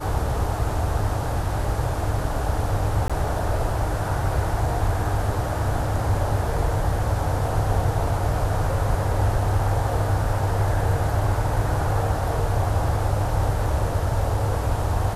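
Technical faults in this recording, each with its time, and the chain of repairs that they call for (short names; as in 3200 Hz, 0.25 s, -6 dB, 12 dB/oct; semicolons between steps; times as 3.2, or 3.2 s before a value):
3.08–3.1 gap 16 ms
11.21 gap 2.4 ms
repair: interpolate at 3.08, 16 ms; interpolate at 11.21, 2.4 ms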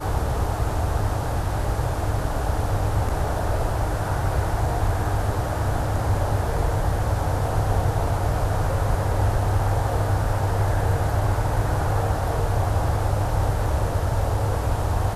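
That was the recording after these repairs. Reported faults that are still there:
none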